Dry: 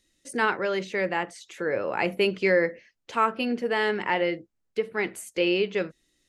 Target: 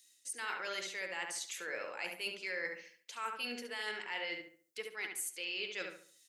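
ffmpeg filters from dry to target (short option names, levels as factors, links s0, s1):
-filter_complex "[0:a]aderivative,areverse,acompressor=threshold=0.00501:ratio=6,areverse,asplit=2[s0][s1];[s1]adelay=70,lowpass=f=2500:p=1,volume=0.668,asplit=2[s2][s3];[s3]adelay=70,lowpass=f=2500:p=1,volume=0.37,asplit=2[s4][s5];[s5]adelay=70,lowpass=f=2500:p=1,volume=0.37,asplit=2[s6][s7];[s7]adelay=70,lowpass=f=2500:p=1,volume=0.37,asplit=2[s8][s9];[s9]adelay=70,lowpass=f=2500:p=1,volume=0.37[s10];[s0][s2][s4][s6][s8][s10]amix=inputs=6:normalize=0,volume=2.66"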